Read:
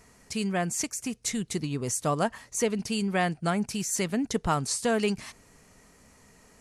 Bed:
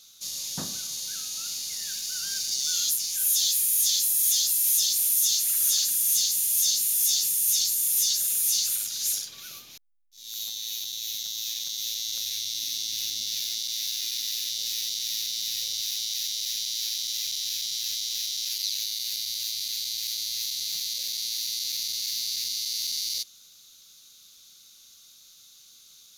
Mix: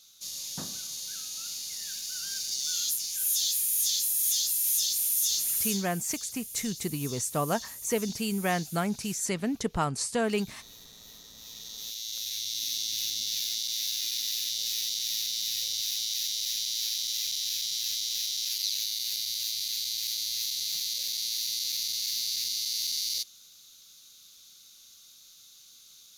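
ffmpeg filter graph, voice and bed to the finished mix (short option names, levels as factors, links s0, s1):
-filter_complex "[0:a]adelay=5300,volume=0.794[s0];[1:a]volume=4.22,afade=t=out:st=5.59:d=0.24:silence=0.211349,afade=t=in:st=11.36:d=1.33:silence=0.149624[s1];[s0][s1]amix=inputs=2:normalize=0"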